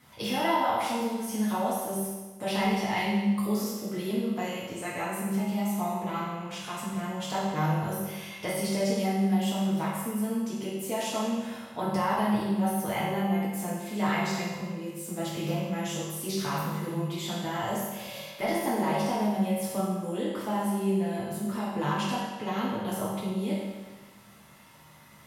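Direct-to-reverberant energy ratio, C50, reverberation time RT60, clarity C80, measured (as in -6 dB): -8.5 dB, -1.0 dB, 1.3 s, 2.0 dB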